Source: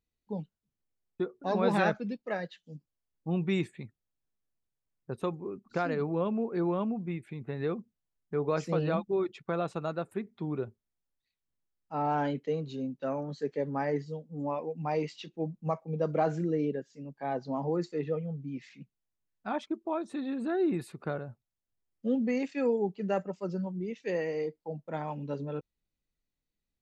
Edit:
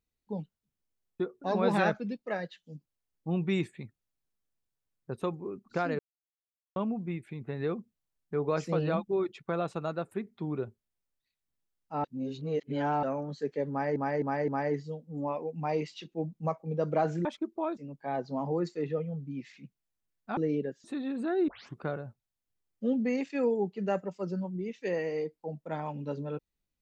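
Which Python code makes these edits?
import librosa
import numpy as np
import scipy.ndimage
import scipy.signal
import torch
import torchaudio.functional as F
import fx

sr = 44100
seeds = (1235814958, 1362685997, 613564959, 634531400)

y = fx.edit(x, sr, fx.silence(start_s=5.99, length_s=0.77),
    fx.reverse_span(start_s=12.04, length_s=0.99),
    fx.repeat(start_s=13.7, length_s=0.26, count=4),
    fx.swap(start_s=16.47, length_s=0.47, other_s=19.54, other_length_s=0.52),
    fx.tape_start(start_s=20.7, length_s=0.29), tone=tone)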